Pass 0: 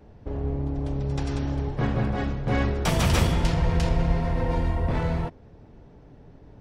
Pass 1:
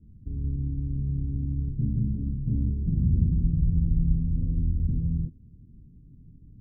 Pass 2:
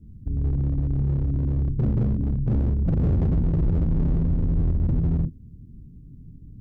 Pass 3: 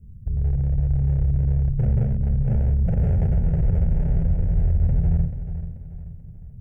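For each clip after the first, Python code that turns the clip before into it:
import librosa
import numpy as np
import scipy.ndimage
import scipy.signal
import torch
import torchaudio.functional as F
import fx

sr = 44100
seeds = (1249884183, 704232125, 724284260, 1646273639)

y1 = scipy.signal.sosfilt(scipy.signal.cheby2(4, 60, 810.0, 'lowpass', fs=sr, output='sos'), x)
y2 = np.clip(y1, -10.0 ** (-24.5 / 20.0), 10.0 ** (-24.5 / 20.0))
y2 = F.gain(torch.from_numpy(y2), 6.5).numpy()
y3 = fx.fixed_phaser(y2, sr, hz=1100.0, stages=6)
y3 = fx.echo_feedback(y3, sr, ms=435, feedback_pct=42, wet_db=-11)
y3 = F.gain(torch.from_numpy(y3), 3.0).numpy()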